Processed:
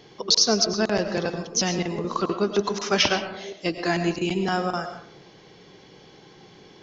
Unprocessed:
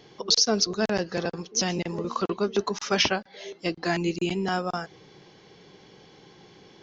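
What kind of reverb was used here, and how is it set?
comb and all-pass reverb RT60 0.7 s, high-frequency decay 0.4×, pre-delay 70 ms, DRR 8 dB
level +2 dB

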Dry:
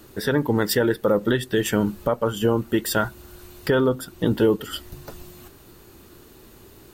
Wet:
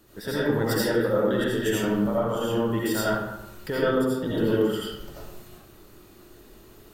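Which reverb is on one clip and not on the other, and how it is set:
comb and all-pass reverb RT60 0.98 s, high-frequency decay 0.6×, pre-delay 45 ms, DRR −8 dB
level −10.5 dB

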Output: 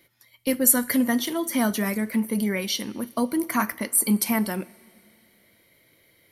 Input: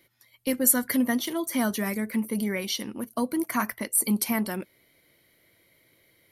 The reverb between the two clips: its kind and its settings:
coupled-rooms reverb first 0.37 s, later 2.6 s, from −17 dB, DRR 13.5 dB
level +2.5 dB

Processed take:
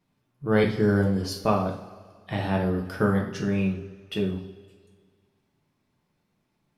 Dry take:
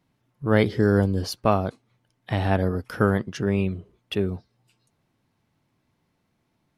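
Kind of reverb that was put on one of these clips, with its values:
coupled-rooms reverb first 0.44 s, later 1.9 s, from −17 dB, DRR −0.5 dB
level −5 dB

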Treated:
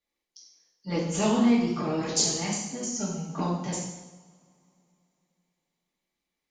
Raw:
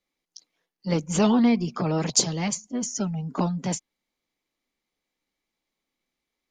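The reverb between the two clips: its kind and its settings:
coupled-rooms reverb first 0.9 s, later 3.3 s, from −25 dB, DRR −5 dB
level −7.5 dB

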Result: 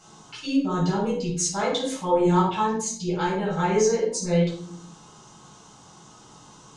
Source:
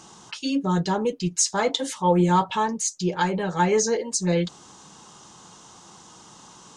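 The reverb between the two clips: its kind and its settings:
rectangular room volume 670 cubic metres, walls furnished, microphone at 7.3 metres
level −11 dB

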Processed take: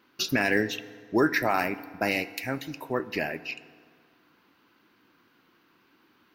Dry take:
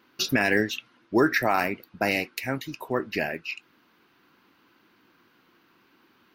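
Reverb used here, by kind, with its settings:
feedback delay network reverb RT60 2 s, low-frequency decay 0.95×, high-frequency decay 0.65×, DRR 15 dB
level −2 dB

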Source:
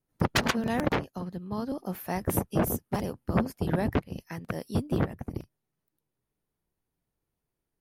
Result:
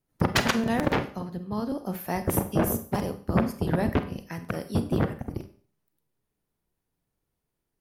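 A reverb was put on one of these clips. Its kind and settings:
four-comb reverb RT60 0.43 s, combs from 31 ms, DRR 9.5 dB
level +2 dB

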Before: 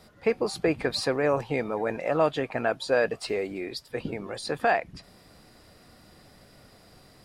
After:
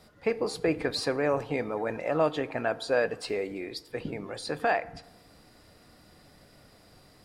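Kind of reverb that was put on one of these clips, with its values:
feedback delay network reverb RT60 0.94 s, low-frequency decay 0.9×, high-frequency decay 0.5×, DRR 14 dB
level −2.5 dB

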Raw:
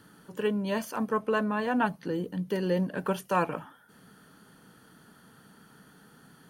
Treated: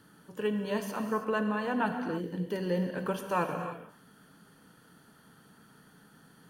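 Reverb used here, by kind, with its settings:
reverb whose tail is shaped and stops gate 350 ms flat, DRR 5.5 dB
level −3.5 dB

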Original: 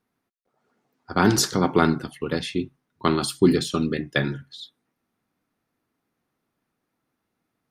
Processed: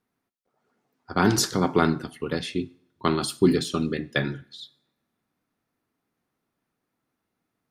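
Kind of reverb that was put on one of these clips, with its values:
coupled-rooms reverb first 0.57 s, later 2 s, from −28 dB, DRR 17.5 dB
level −2 dB

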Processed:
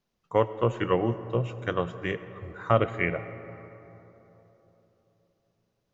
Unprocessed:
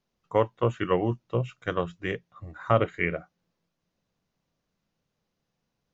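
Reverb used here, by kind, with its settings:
comb and all-pass reverb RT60 3.7 s, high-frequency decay 0.35×, pre-delay 45 ms, DRR 13 dB

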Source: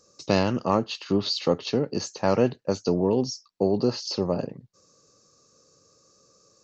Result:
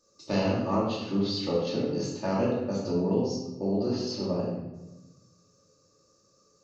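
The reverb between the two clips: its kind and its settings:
rectangular room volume 470 cubic metres, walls mixed, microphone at 2.6 metres
level −11.5 dB

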